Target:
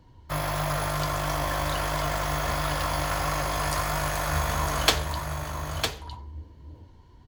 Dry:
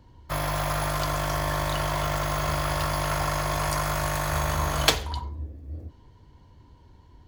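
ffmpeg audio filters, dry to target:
ffmpeg -i in.wav -af "aecho=1:1:956:0.473,flanger=delay=6.1:depth=7.1:regen=66:speed=1.5:shape=sinusoidal,volume=3.5dB" out.wav

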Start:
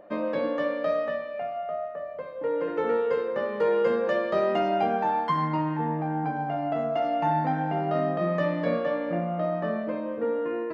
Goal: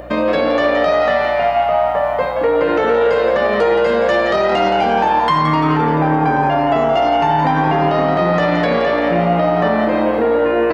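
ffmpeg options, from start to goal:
ffmpeg -i in.wav -filter_complex "[0:a]highshelf=frequency=2400:gain=11.5,areverse,acompressor=mode=upward:threshold=-29dB:ratio=2.5,areverse,alimiter=limit=-23.5dB:level=0:latency=1,acontrast=79,aeval=exprs='val(0)+0.00501*(sin(2*PI*60*n/s)+sin(2*PI*2*60*n/s)/2+sin(2*PI*3*60*n/s)/3+sin(2*PI*4*60*n/s)/4+sin(2*PI*5*60*n/s)/5)':channel_layout=same,asplit=7[link_01][link_02][link_03][link_04][link_05][link_06][link_07];[link_02]adelay=172,afreqshift=120,volume=-8.5dB[link_08];[link_03]adelay=344,afreqshift=240,volume=-14dB[link_09];[link_04]adelay=516,afreqshift=360,volume=-19.5dB[link_10];[link_05]adelay=688,afreqshift=480,volume=-25dB[link_11];[link_06]adelay=860,afreqshift=600,volume=-30.6dB[link_12];[link_07]adelay=1032,afreqshift=720,volume=-36.1dB[link_13];[link_01][link_08][link_09][link_10][link_11][link_12][link_13]amix=inputs=7:normalize=0,volume=8.5dB" out.wav

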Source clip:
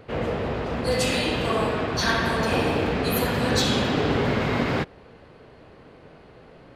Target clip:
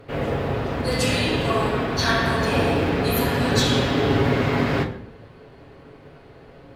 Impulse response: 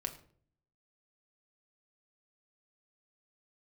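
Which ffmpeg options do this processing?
-filter_complex "[0:a]acrusher=bits=9:mode=log:mix=0:aa=0.000001[link_01];[1:a]atrim=start_sample=2205,asetrate=32193,aresample=44100[link_02];[link_01][link_02]afir=irnorm=-1:irlink=0"

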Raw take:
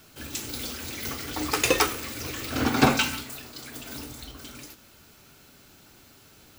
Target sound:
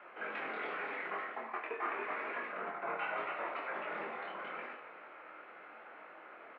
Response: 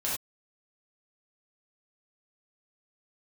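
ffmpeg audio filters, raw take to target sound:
-filter_complex "[0:a]asplit=6[link_01][link_02][link_03][link_04][link_05][link_06];[link_02]adelay=280,afreqshift=-54,volume=-15dB[link_07];[link_03]adelay=560,afreqshift=-108,volume=-20.5dB[link_08];[link_04]adelay=840,afreqshift=-162,volume=-26dB[link_09];[link_05]adelay=1120,afreqshift=-216,volume=-31.5dB[link_10];[link_06]adelay=1400,afreqshift=-270,volume=-37.1dB[link_11];[link_01][link_07][link_08][link_09][link_10][link_11]amix=inputs=6:normalize=0,highpass=frequency=530:width_type=q:width=0.5412,highpass=frequency=530:width_type=q:width=1.307,lowpass=frequency=2200:width_type=q:width=0.5176,lowpass=frequency=2200:width_type=q:width=0.7071,lowpass=frequency=2200:width_type=q:width=1.932,afreqshift=-70,areverse,acompressor=threshold=-44dB:ratio=16,areverse,flanger=delay=20:depth=6:speed=0.83,asplit=2[link_12][link_13];[1:a]atrim=start_sample=2205[link_14];[link_13][link_14]afir=irnorm=-1:irlink=0,volume=-9.5dB[link_15];[link_12][link_15]amix=inputs=2:normalize=0,volume=8.5dB"

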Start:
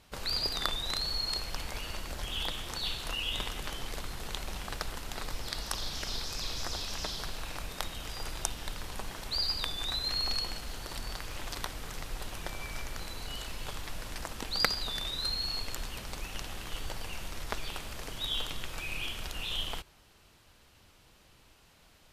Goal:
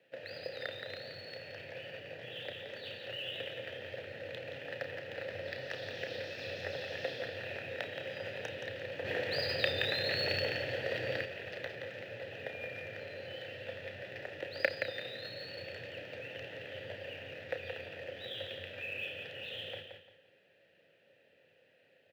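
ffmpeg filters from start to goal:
ffmpeg -i in.wav -filter_complex "[0:a]dynaudnorm=framelen=960:gausssize=11:maxgain=14.5dB,afreqshift=84,asplit=3[link_01][link_02][link_03];[link_01]bandpass=frequency=530:width_type=q:width=8,volume=0dB[link_04];[link_02]bandpass=frequency=1840:width_type=q:width=8,volume=-6dB[link_05];[link_03]bandpass=frequency=2480:width_type=q:width=8,volume=-9dB[link_06];[link_04][link_05][link_06]amix=inputs=3:normalize=0,aemphasis=mode=reproduction:type=75fm,aecho=1:1:173|346|519|692:0.473|0.137|0.0398|0.0115,asplit=3[link_07][link_08][link_09];[link_07]afade=type=out:start_time=9.04:duration=0.02[link_10];[link_08]acontrast=85,afade=type=in:start_time=9.04:duration=0.02,afade=type=out:start_time=11.24:duration=0.02[link_11];[link_09]afade=type=in:start_time=11.24:duration=0.02[link_12];[link_10][link_11][link_12]amix=inputs=3:normalize=0,lowpass=4500,highshelf=frequency=3500:gain=9.5,asplit=2[link_13][link_14];[link_14]adelay=32,volume=-9dB[link_15];[link_13][link_15]amix=inputs=2:normalize=0,volume=6dB" -ar 44100 -c:a adpcm_ima_wav out.wav

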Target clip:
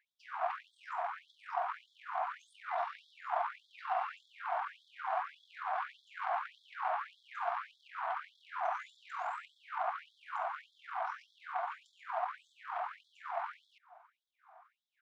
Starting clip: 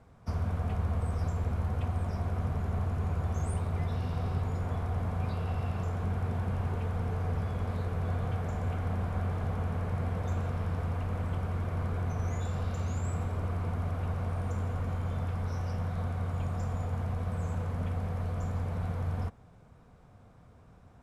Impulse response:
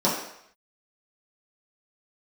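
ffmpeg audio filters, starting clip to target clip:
-af "adynamicsmooth=sensitivity=1.5:basefreq=840,atempo=1.4,afftfilt=real='re*gte(b*sr/1024,630*pow(3300/630,0.5+0.5*sin(2*PI*1.7*pts/sr)))':imag='im*gte(b*sr/1024,630*pow(3300/630,0.5+0.5*sin(2*PI*1.7*pts/sr)))':win_size=1024:overlap=0.75,volume=16.5dB"

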